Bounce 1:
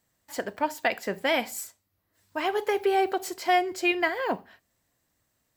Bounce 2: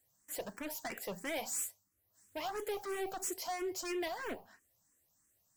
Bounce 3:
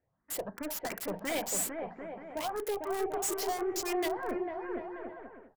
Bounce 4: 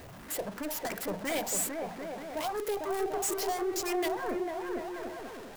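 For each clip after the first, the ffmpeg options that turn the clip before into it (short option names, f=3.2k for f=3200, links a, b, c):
-filter_complex "[0:a]highshelf=f=5.1k:t=q:w=1.5:g=8.5,volume=29dB,asoftclip=hard,volume=-29dB,asplit=2[a][b];[b]afreqshift=3[c];[a][c]amix=inputs=2:normalize=1,volume=-4dB"
-filter_complex "[0:a]acrossover=split=1800[a][b];[a]aecho=1:1:450|742.5|932.6|1056|1137:0.631|0.398|0.251|0.158|0.1[c];[b]acrusher=bits=6:mix=0:aa=0.000001[d];[c][d]amix=inputs=2:normalize=0,volume=4.5dB"
-af "aeval=exprs='val(0)+0.5*0.00841*sgn(val(0))':c=same"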